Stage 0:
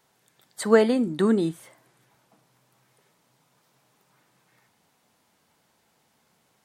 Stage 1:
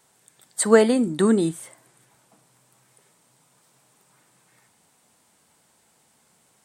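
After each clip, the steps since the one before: bell 8400 Hz +11.5 dB 0.53 oct; gain +2.5 dB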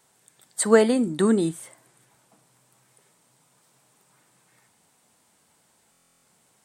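stuck buffer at 5.91, samples 1024, times 13; gain -1.5 dB

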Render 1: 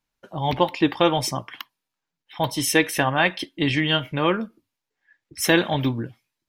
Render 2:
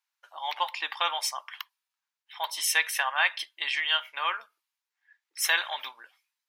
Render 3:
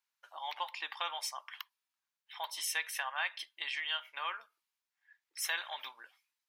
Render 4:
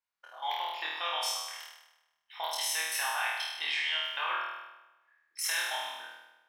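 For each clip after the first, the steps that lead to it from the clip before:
HPF 910 Hz 24 dB/oct; gain -2.5 dB
compressor 1.5:1, threshold -42 dBFS, peak gain reduction 8.5 dB; gain -3 dB
level quantiser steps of 14 dB; flutter echo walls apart 4.3 m, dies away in 1.1 s; mismatched tape noise reduction decoder only; gain +6 dB

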